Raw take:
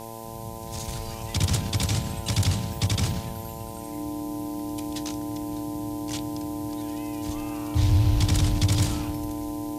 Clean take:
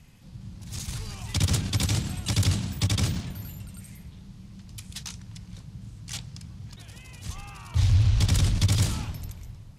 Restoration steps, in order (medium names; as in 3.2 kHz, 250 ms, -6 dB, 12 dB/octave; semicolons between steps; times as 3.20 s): de-hum 112.8 Hz, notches 9; band-stop 300 Hz, Q 30; noise print and reduce 10 dB